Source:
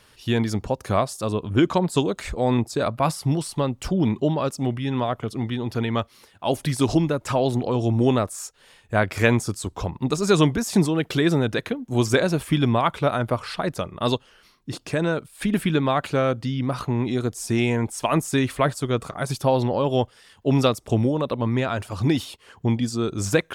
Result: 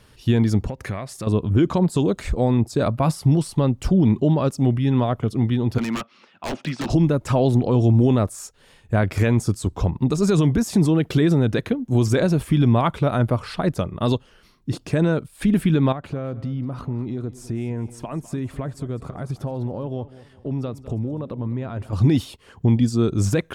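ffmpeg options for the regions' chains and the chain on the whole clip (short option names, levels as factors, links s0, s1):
-filter_complex "[0:a]asettb=1/sr,asplit=3[s0][s1][s2];[s0]atrim=end=0.684[s3];[s1]atrim=start=0.68:end=1.27,asetpts=PTS-STARTPTS,afade=t=in:d=0.004:c=qsin,afade=t=out:st=0.586:d=0.004:c=qsin,acompressor=threshold=0.0251:ratio=4:attack=3.2:release=140:knee=1:detection=peak,equalizer=f=2000:t=o:w=0.81:g=12.5[s4];[s2]atrim=start=1.266[s5];[s3][s4]acrossfade=d=0.004:c1=hsin:c2=qsin[s6];[s6][s5]acrossfade=d=0.004:c1=qsin:c2=hsin,asettb=1/sr,asplit=3[s7][s8][s9];[s7]atrim=end=5.784[s10];[s8]atrim=start=5.78:end=6.9,asetpts=PTS-STARTPTS,afade=t=in:d=0.004:c=qsin,afade=t=out:st=1.116:d=0.004:c=qsin,highpass=f=200:w=0.5412,highpass=f=200:w=1.3066,equalizer=f=290:t=q:w=4:g=-4,equalizer=f=430:t=q:w=4:g=-7,equalizer=f=1300:t=q:w=4:g=7,equalizer=f=2600:t=q:w=4:g=7,equalizer=f=4300:t=q:w=4:g=-3,lowpass=f=5200:w=0.5412,lowpass=f=5200:w=1.3066,aeval=exprs='0.075*(abs(mod(val(0)/0.075+3,4)-2)-1)':c=same[s11];[s9]atrim=start=6.896[s12];[s10][s11]acrossfade=d=0.004:c1=hsin:c2=qsin[s13];[s13][s12]acrossfade=d=0.004:c1=qsin:c2=hsin,asettb=1/sr,asplit=3[s14][s15][s16];[s14]atrim=end=15.924[s17];[s15]atrim=start=15.92:end=21.93,asetpts=PTS-STARTPTS,afade=t=in:d=0.004:c=qsin,afade=t=out:st=6.006:d=0.004:c=qsin,highshelf=f=2600:g=-10.5,acompressor=threshold=0.0224:ratio=3:attack=3.2:release=140:knee=1:detection=peak,aecho=1:1:204|408|612:0.141|0.0509|0.0183,atrim=end_sample=265041[s18];[s16]atrim=start=21.926[s19];[s17][s18]acrossfade=d=0.004:c1=hsin:c2=qsin[s20];[s20][s19]acrossfade=d=0.004:c1=qsin:c2=hsin,lowshelf=f=400:g=11,alimiter=level_in=2:limit=0.891:release=50:level=0:latency=1,volume=0.398"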